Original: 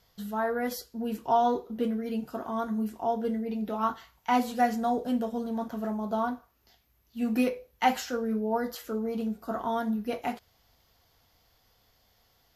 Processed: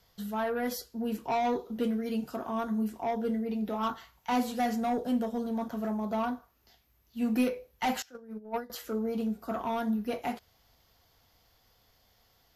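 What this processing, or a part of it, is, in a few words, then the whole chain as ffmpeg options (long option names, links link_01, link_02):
one-band saturation: -filter_complex "[0:a]asettb=1/sr,asplit=3[link_01][link_02][link_03];[link_01]atrim=end=1.594[link_04];[link_02]atrim=start=1.59:end=2.36,asetpts=PTS-STARTPTS,afade=type=in:duration=0.004:curve=qsin,afade=type=out:start_time=0.766:duration=0.004:curve=qsin,equalizer=frequency=6400:width_type=o:width=2.4:gain=4.5[link_05];[link_03]atrim=start=2.356[link_06];[link_04][link_05]acrossfade=duration=0.004:curve1=hsin:curve2=qsin[link_07];[link_07][link_06]acrossfade=duration=0.004:curve1=qsin:curve2=hsin,asettb=1/sr,asplit=3[link_08][link_09][link_10];[link_08]atrim=end=8.024[link_11];[link_09]atrim=start=8.02:end=8.7,asetpts=PTS-STARTPTS,afade=type=in:duration=0.004:curve=qsin,afade=type=out:start_time=0.676:duration=0.004:curve=qsin,agate=range=-20dB:threshold=-26dB:ratio=16:detection=peak[link_12];[link_10]atrim=start=8.696[link_13];[link_11][link_12]acrossfade=duration=0.004:curve1=hsin:curve2=qsin[link_14];[link_14][link_13]acrossfade=duration=0.004:curve1=qsin:curve2=hsin,acrossover=split=260|4000[link_15][link_16][link_17];[link_16]asoftclip=type=tanh:threshold=-25.5dB[link_18];[link_15][link_18][link_17]amix=inputs=3:normalize=0"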